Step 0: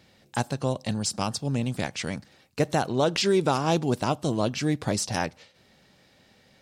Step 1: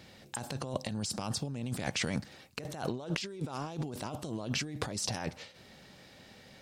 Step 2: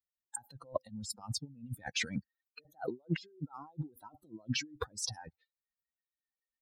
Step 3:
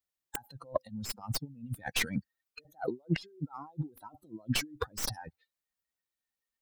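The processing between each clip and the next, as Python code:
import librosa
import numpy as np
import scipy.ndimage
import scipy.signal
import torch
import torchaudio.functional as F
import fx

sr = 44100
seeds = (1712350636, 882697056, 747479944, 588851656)

y1 = fx.over_compress(x, sr, threshold_db=-34.0, ratio=-1.0)
y1 = F.gain(torch.from_numpy(y1), -3.0).numpy()
y2 = fx.bin_expand(y1, sr, power=3.0)
y2 = fx.upward_expand(y2, sr, threshold_db=-48.0, expansion=1.5)
y2 = F.gain(torch.from_numpy(y2), 6.0).numpy()
y3 = fx.tracing_dist(y2, sr, depth_ms=0.12)
y3 = F.gain(torch.from_numpy(y3), 3.5).numpy()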